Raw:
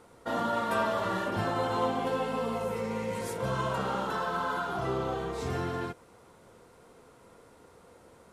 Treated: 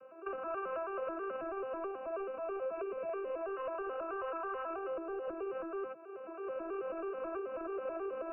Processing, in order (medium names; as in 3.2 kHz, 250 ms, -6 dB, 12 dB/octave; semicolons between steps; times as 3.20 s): vocoder on a broken chord major triad, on C4, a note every 108 ms; recorder AGC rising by 24 dB/s; 3.09–5.28 s: high-pass 230 Hz 24 dB/octave; compression 10:1, threshold -36 dBFS, peak gain reduction 12 dB; saturation -33.5 dBFS, distortion -20 dB; brick-wall FIR low-pass 2.9 kHz; static phaser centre 1.3 kHz, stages 8; trim +5 dB